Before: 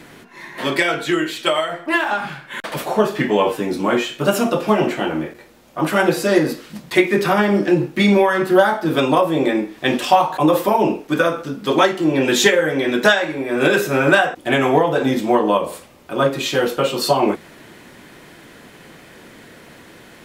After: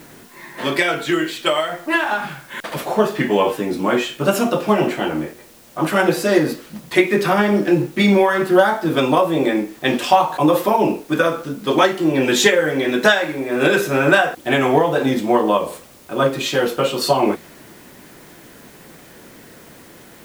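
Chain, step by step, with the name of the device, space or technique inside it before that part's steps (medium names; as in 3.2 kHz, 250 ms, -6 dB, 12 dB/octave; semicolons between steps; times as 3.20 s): plain cassette with noise reduction switched in (tape noise reduction on one side only decoder only; wow and flutter 27 cents; white noise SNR 30 dB)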